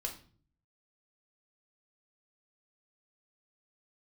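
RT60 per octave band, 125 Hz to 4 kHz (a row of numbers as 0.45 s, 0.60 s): 0.85 s, 0.70 s, 0.50 s, 0.40 s, 0.40 s, 0.40 s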